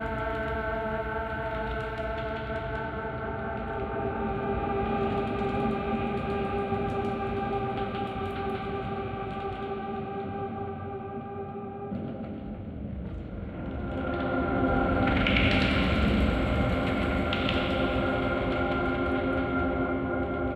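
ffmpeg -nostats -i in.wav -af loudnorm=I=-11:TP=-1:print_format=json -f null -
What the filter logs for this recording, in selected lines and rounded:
"input_i" : "-29.5",
"input_tp" : "-10.2",
"input_lra" : "9.4",
"input_thresh" : "-39.5",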